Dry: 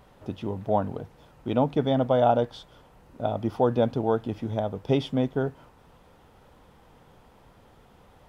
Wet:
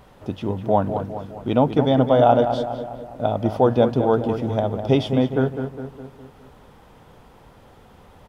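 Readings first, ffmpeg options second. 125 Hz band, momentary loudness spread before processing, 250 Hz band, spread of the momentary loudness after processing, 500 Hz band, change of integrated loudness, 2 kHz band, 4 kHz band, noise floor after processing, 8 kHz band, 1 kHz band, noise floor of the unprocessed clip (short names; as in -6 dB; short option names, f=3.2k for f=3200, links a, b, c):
+6.5 dB, 13 LU, +6.5 dB, 15 LU, +6.0 dB, +5.5 dB, +6.0 dB, +6.0 dB, -50 dBFS, n/a, +6.0 dB, -57 dBFS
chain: -filter_complex "[0:a]asplit=2[a][b];[b]adelay=205,lowpass=f=2.3k:p=1,volume=-8dB,asplit=2[c][d];[d]adelay=205,lowpass=f=2.3k:p=1,volume=0.54,asplit=2[e][f];[f]adelay=205,lowpass=f=2.3k:p=1,volume=0.54,asplit=2[g][h];[h]adelay=205,lowpass=f=2.3k:p=1,volume=0.54,asplit=2[i][j];[j]adelay=205,lowpass=f=2.3k:p=1,volume=0.54,asplit=2[k][l];[l]adelay=205,lowpass=f=2.3k:p=1,volume=0.54[m];[a][c][e][g][i][k][m]amix=inputs=7:normalize=0,volume=5.5dB"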